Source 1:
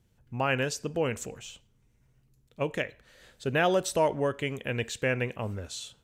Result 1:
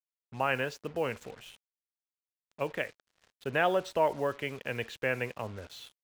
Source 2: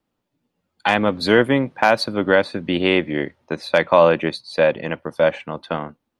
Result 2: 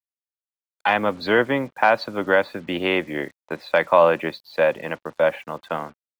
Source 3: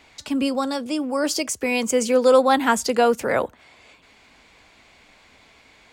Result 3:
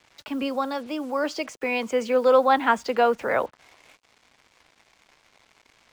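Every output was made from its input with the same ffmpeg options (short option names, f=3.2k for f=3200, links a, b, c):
-filter_complex "[0:a]lowpass=3k,lowshelf=f=450:g=-7.5,acrossover=split=230|1100[a][b][c];[b]crystalizer=i=8.5:c=0[d];[a][d][c]amix=inputs=3:normalize=0,acrusher=bits=7:mix=0:aa=0.5,volume=-1dB"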